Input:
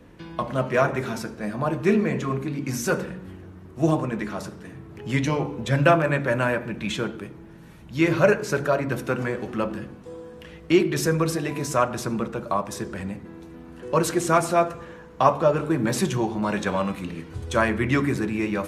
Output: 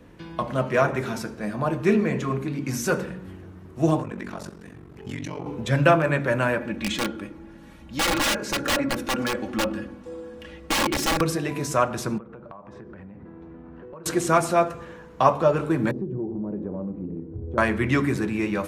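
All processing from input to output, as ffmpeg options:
-filter_complex "[0:a]asettb=1/sr,asplit=3[s0][s1][s2];[s0]atrim=end=4.024[s3];[s1]atrim=start=4.02:end=5.46,asetpts=PTS-STARTPTS,afade=t=in:d=0.004:c=qsin,afade=t=out:st=1.436:d=0.004:c=qsin,acompressor=threshold=0.0501:ratio=6:attack=3.2:release=140:knee=1:detection=peak,aeval=exprs='val(0)*sin(2*PI*23*n/s)':c=same[s4];[s2]atrim=start=5.456[s5];[s3][s4]acrossfade=d=0.004:c1=hsin:c2=qsin[s6];[s6][s5]acrossfade=d=0.004:c1=qsin:c2=hsin,asettb=1/sr,asplit=3[s7][s8][s9];[s7]atrim=end=6.594[s10];[s8]atrim=start=6.59:end=11.21,asetpts=PTS-STARTPTS,afade=t=in:d=0.004:c=qsin,afade=t=out:st=4.616:d=0.004:c=qsin,aeval=exprs='(mod(7.94*val(0)+1,2)-1)/7.94':c=same,highshelf=f=11000:g=-8,aecho=1:1:3.6:0.64,atrim=end_sample=203742[s11];[s9]atrim=start=11.206[s12];[s10][s11]acrossfade=d=0.004:c1=hsin:c2=qsin[s13];[s13][s12]acrossfade=d=0.004:c1=qsin:c2=hsin,asettb=1/sr,asplit=3[s14][s15][s16];[s14]atrim=end=12.184[s17];[s15]atrim=start=12.18:end=14.06,asetpts=PTS-STARTPTS,afade=t=in:d=0.004:c=qsin,afade=t=out:st=1.876:d=0.004:c=qsin,lowpass=1600,acompressor=threshold=0.0126:ratio=12:attack=3.2:release=140:knee=1:detection=peak[s18];[s16]atrim=start=14.056[s19];[s17][s18]acrossfade=d=0.004:c1=hsin:c2=qsin[s20];[s20][s19]acrossfade=d=0.004:c1=qsin:c2=hsin,asettb=1/sr,asplit=3[s21][s22][s23];[s21]atrim=end=15.914[s24];[s22]atrim=start=15.91:end=17.58,asetpts=PTS-STARTPTS,afade=t=in:d=0.004:c=qsin,afade=t=out:st=1.666:d=0.004:c=qsin,lowpass=f=370:t=q:w=1.7,acompressor=threshold=0.0398:ratio=3:attack=3.2:release=140:knee=1:detection=peak[s25];[s23]atrim=start=17.576[s26];[s24][s25]acrossfade=d=0.004:c1=hsin:c2=qsin[s27];[s27][s26]acrossfade=d=0.004:c1=qsin:c2=hsin"

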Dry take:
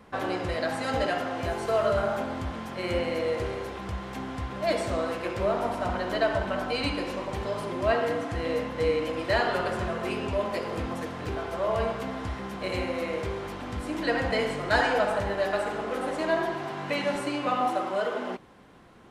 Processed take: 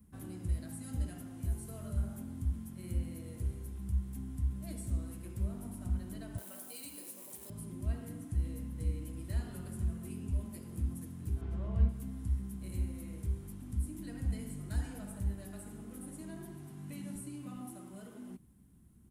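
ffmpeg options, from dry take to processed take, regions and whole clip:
-filter_complex "[0:a]asettb=1/sr,asplit=3[s0][s1][s2];[s0]atrim=end=6.384[s3];[s1]atrim=start=6.38:end=7.5,asetpts=PTS-STARTPTS,afade=t=in:d=0.004:c=qsin,afade=t=out:st=1.116:d=0.004:c=qsin,aeval=exprs='val(0)+0.5*0.00708*sgn(val(0))':c=same,highpass=f=500:t=q:w=1.7,highshelf=f=2700:g=11[s4];[s2]atrim=start=7.496[s5];[s3][s4]acrossfade=d=0.004:c1=hsin:c2=qsin[s6];[s6][s5]acrossfade=d=0.004:c1=qsin:c2=hsin,asettb=1/sr,asplit=3[s7][s8][s9];[s7]atrim=end=11.414[s10];[s8]atrim=start=11.41:end=11.89,asetpts=PTS-STARTPTS,afade=t=in:d=0.004:c=qsin,afade=t=out:st=0.476:d=0.004:c=qsin,lowpass=3200,acontrast=35[s11];[s9]atrim=start=11.886[s12];[s10][s11]acrossfade=d=0.004:c1=hsin:c2=qsin[s13];[s13][s12]acrossfade=d=0.004:c1=qsin:c2=hsin,firequalizer=gain_entry='entry(200,0);entry(500,-25);entry(4600,-17);entry(9800,8)':delay=0.05:min_phase=1,acrossover=split=230[s14][s15];[s15]acompressor=threshold=0.0112:ratio=6[s16];[s14][s16]amix=inputs=2:normalize=0,equalizer=f=68:t=o:w=0.4:g=10.5,volume=0.596"

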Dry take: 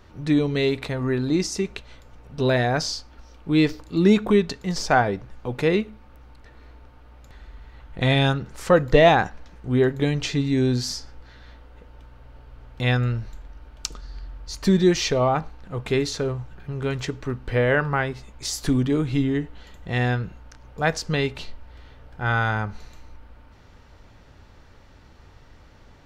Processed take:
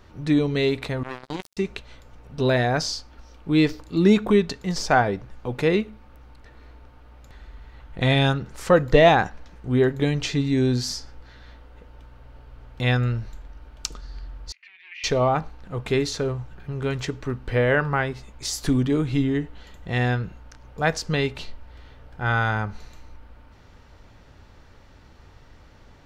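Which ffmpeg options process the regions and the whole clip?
-filter_complex "[0:a]asettb=1/sr,asplit=3[s0][s1][s2];[s0]atrim=end=1.034[s3];[s1]atrim=start=1.03:end=1.57,asetpts=PTS-STARTPTS,afade=t=in:d=0.004:c=qsin,afade=t=out:st=0.536:d=0.004:c=qsin,equalizer=f=110:t=o:w=0.83:g=-4.5,acrusher=bits=2:mix=0:aa=0.5,acompressor=threshold=0.0355:ratio=2.5:attack=3.2:release=140:knee=1:detection=peak[s4];[s2]atrim=start=1.566[s5];[s3][s4]acrossfade=d=0.004:c1=hsin:c2=qsin[s6];[s6][s5]acrossfade=d=0.004:c1=qsin:c2=hsin,asettb=1/sr,asplit=3[s7][s8][s9];[s7]atrim=end=14.524[s10];[s8]atrim=start=14.52:end=15.04,asetpts=PTS-STARTPTS,afade=t=in:d=0.004:c=qsin,afade=t=out:st=0.516:d=0.004:c=qsin,aeval=exprs='(tanh(10*val(0)+0.45)-tanh(0.45))/10':c=same,asuperpass=centerf=2300:order=4:qfactor=3.2[s11];[s9]atrim=start=15.036[s12];[s10][s11]acrossfade=d=0.004:c1=hsin:c2=qsin[s13];[s13][s12]acrossfade=d=0.004:c1=qsin:c2=hsin"

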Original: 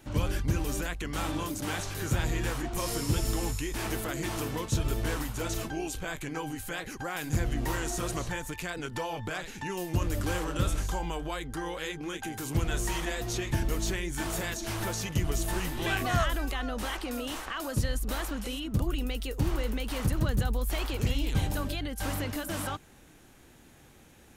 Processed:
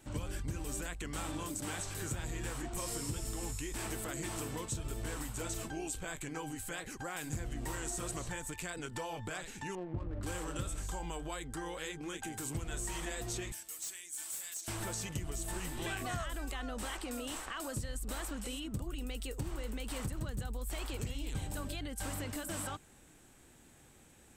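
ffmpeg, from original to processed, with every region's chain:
-filter_complex "[0:a]asettb=1/sr,asplit=3[s0][s1][s2];[s0]atrim=end=9.754[s3];[s1]atrim=start=9.75:end=10.23,asetpts=PTS-STARTPTS,afade=t=in:d=0.004:c=qsin,afade=t=out:st=0.476:d=0.004:c=qsin,lowpass=1300,adynamicsmooth=sensitivity=7:basefreq=510[s4];[s2]atrim=start=10.226[s5];[s3][s4]acrossfade=d=0.004:c1=hsin:c2=qsin[s6];[s6][s5]acrossfade=d=0.004:c1=qsin:c2=hsin,asettb=1/sr,asplit=3[s7][s8][s9];[s7]atrim=end=13.524[s10];[s8]atrim=start=13.52:end=14.68,asetpts=PTS-STARTPTS,afade=t=in:d=0.004:c=qsin,afade=t=out:st=1.156:d=0.004:c=qsin,aderivative,aeval=exprs='0.0224*(abs(mod(val(0)/0.0224+3,4)-2)-1)':c=same[s11];[s9]atrim=start=14.676[s12];[s10][s11]acrossfade=d=0.004:c1=hsin:c2=qsin[s13];[s13][s12]acrossfade=d=0.004:c1=qsin:c2=hsin,equalizer=f=8000:t=o:w=0.23:g=13,acompressor=threshold=0.0355:ratio=6,volume=0.531"

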